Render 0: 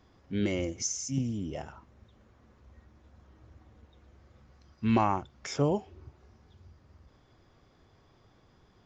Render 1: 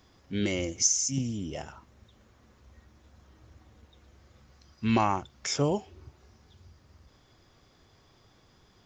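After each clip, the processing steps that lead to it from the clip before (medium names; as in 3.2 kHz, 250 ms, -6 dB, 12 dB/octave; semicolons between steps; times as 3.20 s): treble shelf 2.9 kHz +10.5 dB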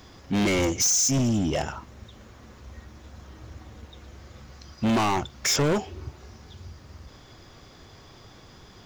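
in parallel at -2 dB: peak limiter -19.5 dBFS, peak gain reduction 8 dB; on the sum: hard clipper -27 dBFS, distortion -5 dB; trim +7 dB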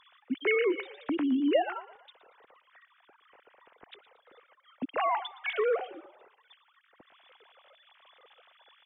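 formants replaced by sine waves; frequency-shifting echo 115 ms, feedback 46%, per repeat +33 Hz, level -18 dB; trim -5.5 dB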